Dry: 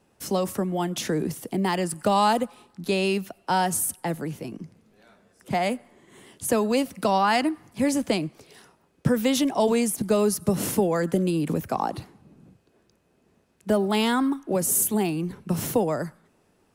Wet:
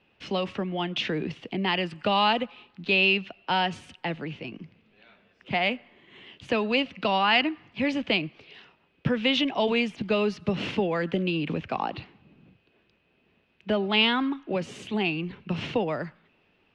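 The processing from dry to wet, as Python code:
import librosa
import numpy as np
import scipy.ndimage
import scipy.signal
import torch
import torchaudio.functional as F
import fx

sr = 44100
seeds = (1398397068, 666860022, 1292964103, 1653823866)

y = scipy.signal.sosfilt(scipy.signal.butter(4, 4200.0, 'lowpass', fs=sr, output='sos'), x)
y = fx.peak_eq(y, sr, hz=2700.0, db=14.5, octaves=0.94)
y = y * 10.0 ** (-4.0 / 20.0)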